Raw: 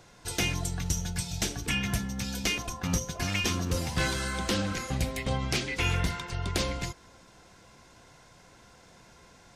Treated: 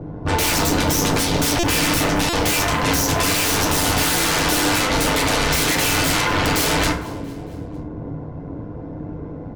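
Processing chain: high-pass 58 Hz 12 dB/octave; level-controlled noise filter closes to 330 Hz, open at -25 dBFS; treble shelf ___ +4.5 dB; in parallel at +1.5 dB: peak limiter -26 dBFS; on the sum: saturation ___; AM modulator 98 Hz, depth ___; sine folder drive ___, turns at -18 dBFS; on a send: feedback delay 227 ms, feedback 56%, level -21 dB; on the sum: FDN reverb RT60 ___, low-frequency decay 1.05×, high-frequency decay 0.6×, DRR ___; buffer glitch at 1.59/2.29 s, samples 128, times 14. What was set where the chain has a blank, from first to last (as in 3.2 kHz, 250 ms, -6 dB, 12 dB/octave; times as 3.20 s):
9.6 kHz, -18 dBFS, 75%, 19 dB, 0.47 s, 0.5 dB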